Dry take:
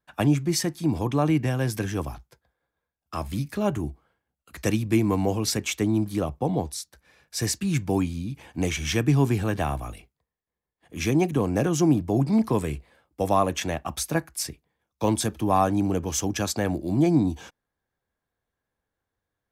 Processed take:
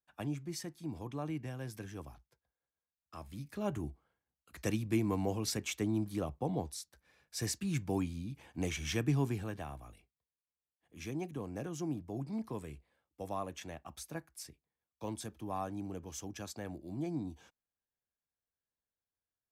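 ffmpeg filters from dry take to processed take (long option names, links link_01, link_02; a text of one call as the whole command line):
ffmpeg -i in.wav -af "volume=-10dB,afade=type=in:start_time=3.36:duration=0.4:silence=0.446684,afade=type=out:start_time=9.08:duration=0.57:silence=0.421697" out.wav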